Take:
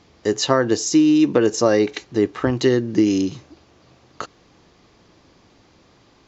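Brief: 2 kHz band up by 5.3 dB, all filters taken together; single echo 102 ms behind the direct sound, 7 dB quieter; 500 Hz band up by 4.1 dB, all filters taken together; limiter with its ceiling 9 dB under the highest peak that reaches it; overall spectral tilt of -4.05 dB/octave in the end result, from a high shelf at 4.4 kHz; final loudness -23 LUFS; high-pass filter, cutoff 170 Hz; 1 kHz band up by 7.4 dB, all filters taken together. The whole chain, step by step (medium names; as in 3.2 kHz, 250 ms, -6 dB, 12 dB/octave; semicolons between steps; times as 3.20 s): high-pass 170 Hz; peaking EQ 500 Hz +3.5 dB; peaking EQ 1 kHz +7.5 dB; peaking EQ 2 kHz +4.5 dB; treble shelf 4.4 kHz -4.5 dB; peak limiter -6 dBFS; delay 102 ms -7 dB; trim -6 dB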